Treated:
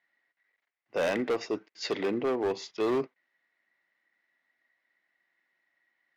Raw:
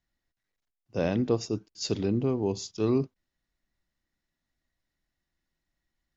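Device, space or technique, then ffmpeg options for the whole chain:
megaphone: -af "highpass=490,lowpass=2.7k,equalizer=f=2k:t=o:w=0.42:g=11.5,asoftclip=type=hard:threshold=-31dB,volume=7.5dB"

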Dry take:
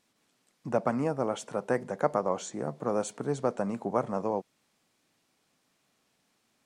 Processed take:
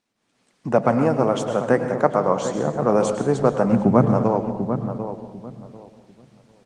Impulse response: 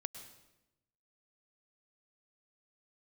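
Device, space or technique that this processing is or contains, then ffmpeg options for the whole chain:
speakerphone in a meeting room: -filter_complex "[0:a]highpass=63,asplit=3[a][b][c];[a]afade=t=out:st=3.71:d=0.02[d];[b]bass=f=250:g=15,treble=f=4k:g=-1,afade=t=in:st=3.71:d=0.02,afade=t=out:st=4.11:d=0.02[e];[c]afade=t=in:st=4.11:d=0.02[f];[d][e][f]amix=inputs=3:normalize=0,lowpass=7.1k,asplit=2[g][h];[h]adelay=745,lowpass=f=1.3k:p=1,volume=-10dB,asplit=2[i][j];[j]adelay=745,lowpass=f=1.3k:p=1,volume=0.24,asplit=2[k][l];[l]adelay=745,lowpass=f=1.3k:p=1,volume=0.24[m];[g][i][k][m]amix=inputs=4:normalize=0[n];[1:a]atrim=start_sample=2205[o];[n][o]afir=irnorm=-1:irlink=0,dynaudnorm=f=140:g=5:m=14dB" -ar 48000 -c:a libopus -b:a 24k

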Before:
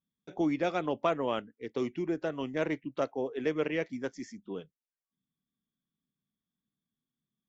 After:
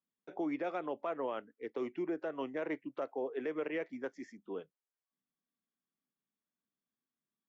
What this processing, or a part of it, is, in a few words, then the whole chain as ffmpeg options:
DJ mixer with the lows and highs turned down: -filter_complex "[0:a]acrossover=split=280 2400:gain=0.158 1 0.2[a][b][c];[a][b][c]amix=inputs=3:normalize=0,alimiter=level_in=4dB:limit=-24dB:level=0:latency=1:release=126,volume=-4dB"

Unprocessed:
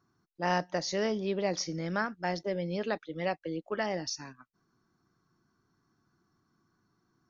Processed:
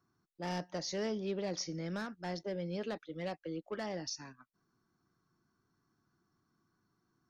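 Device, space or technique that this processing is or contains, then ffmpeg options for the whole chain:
one-band saturation: -filter_complex "[0:a]acrossover=split=450|3900[a][b][c];[b]asoftclip=type=tanh:threshold=-34.5dB[d];[a][d][c]amix=inputs=3:normalize=0,volume=-4.5dB"

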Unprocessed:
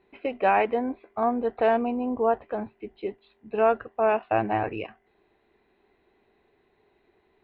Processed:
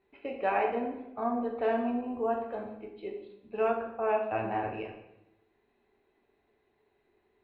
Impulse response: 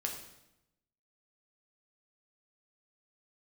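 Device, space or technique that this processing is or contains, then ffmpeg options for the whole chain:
bathroom: -filter_complex "[1:a]atrim=start_sample=2205[a];[0:a][a]afir=irnorm=-1:irlink=0,asettb=1/sr,asplit=3[b][c][d];[b]atrim=end=2.014[e];[c]atrim=start=2.01:end=3.7,asetpts=PTS-STARTPTS,afade=t=in:d=0.004:c=qsin,afade=t=out:st=1.686:d=0.004:c=qsin,adynamicequalizer=threshold=0.0112:dfrequency=2400:dqfactor=0.7:tfrequency=2400:tqfactor=0.7:attack=5:release=100:ratio=0.375:range=3:mode=boostabove:tftype=highshelf[f];[d]atrim=start=3.696[g];[e][f]acrossfade=d=0.004:c1=hsin:c2=qsin[h];[h][g]acrossfade=d=0.004:c1=qsin:c2=hsin,volume=-8dB"

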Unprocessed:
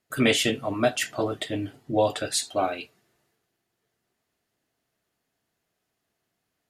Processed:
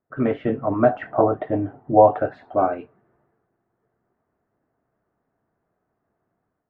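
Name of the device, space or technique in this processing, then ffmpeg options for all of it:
action camera in a waterproof case: -filter_complex "[0:a]asettb=1/sr,asplit=3[a][b][c];[a]atrim=end=0.894[d];[b]atrim=start=0.89:end=2.55,asetpts=PTS-STARTPTS,afade=t=in:d=0.004:c=qsin,afade=t=out:st=1.656:d=0.004:c=qsin,equalizer=f=760:w=1.7:g=8[e];[c]atrim=start=2.546[f];[d][e]acrossfade=d=0.004:c1=hsin:c2=qsin[g];[g][f]acrossfade=d=0.004:c1=qsin:c2=hsin,lowpass=f=1.4k:w=0.5412,lowpass=f=1.4k:w=1.3066,dynaudnorm=f=340:g=3:m=7.5dB" -ar 48000 -c:a aac -b:a 64k

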